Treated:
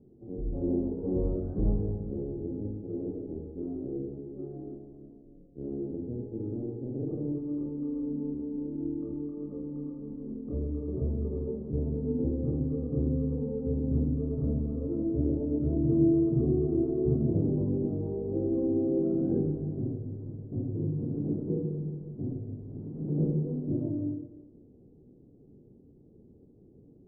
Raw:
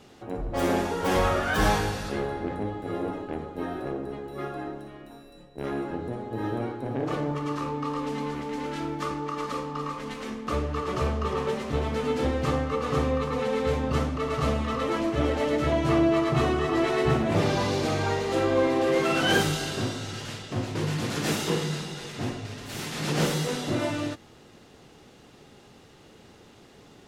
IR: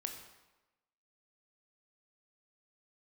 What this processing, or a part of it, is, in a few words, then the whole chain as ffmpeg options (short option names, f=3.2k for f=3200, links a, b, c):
next room: -filter_complex "[0:a]lowpass=f=400:w=0.5412,lowpass=f=400:w=1.3066[a];[1:a]atrim=start_sample=2205[b];[a][b]afir=irnorm=-1:irlink=0"